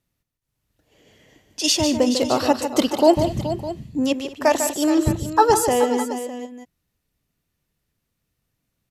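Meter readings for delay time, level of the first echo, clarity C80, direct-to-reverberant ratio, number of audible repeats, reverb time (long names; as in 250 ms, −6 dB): 149 ms, −8.5 dB, no reverb audible, no reverb audible, 4, no reverb audible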